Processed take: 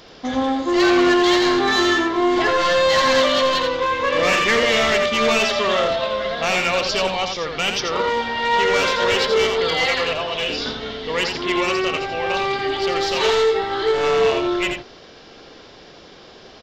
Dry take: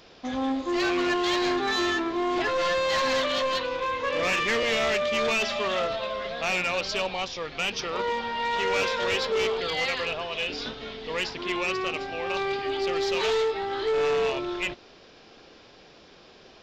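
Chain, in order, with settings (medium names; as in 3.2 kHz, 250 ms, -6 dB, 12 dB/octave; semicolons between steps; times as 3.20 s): band-stop 2.5 kHz, Q 13; delay 85 ms -6 dB; trim +7.5 dB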